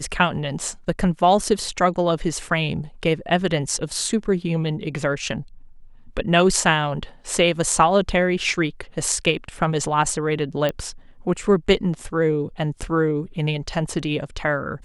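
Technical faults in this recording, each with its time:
0:10.69: click −11 dBFS

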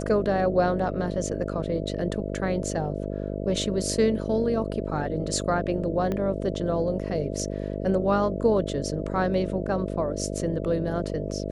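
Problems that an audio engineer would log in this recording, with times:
mains buzz 50 Hz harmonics 13 −31 dBFS
0:06.12: click −17 dBFS

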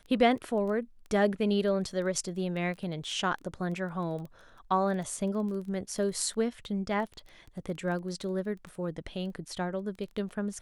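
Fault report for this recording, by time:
surface crackle 13 per second −37 dBFS

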